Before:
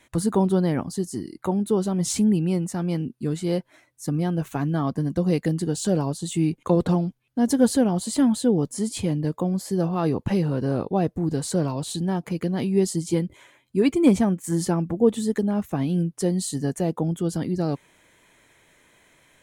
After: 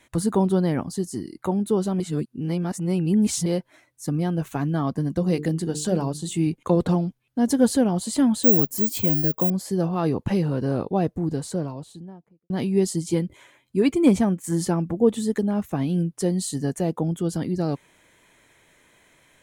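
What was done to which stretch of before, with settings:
2.00–3.46 s: reverse
5.19–6.47 s: hum notches 50/100/150/200/250/300/350/400/450 Hz
8.43–9.50 s: careless resampling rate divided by 2×, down filtered, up zero stuff
10.97–12.50 s: studio fade out

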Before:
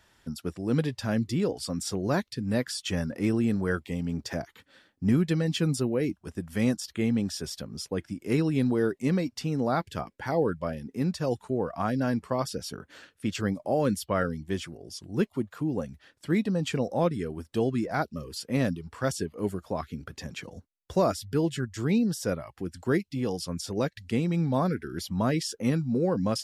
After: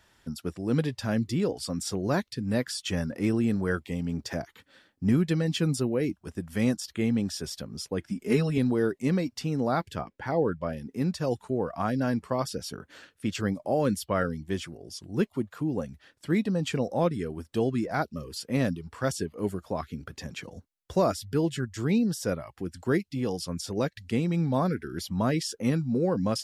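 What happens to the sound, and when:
8.09–8.58 s: comb 4.7 ms, depth 80%
9.95–10.70 s: treble shelf 5.7 kHz -12 dB

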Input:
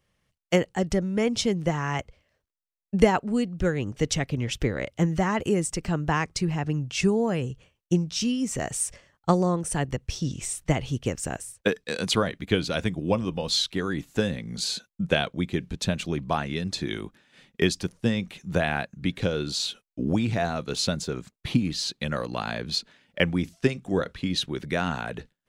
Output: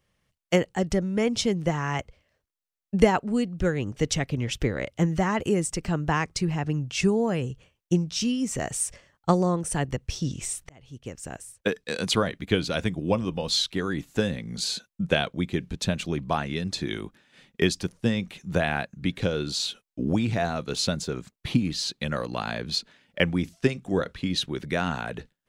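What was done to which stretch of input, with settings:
10.69–11.93 s: fade in

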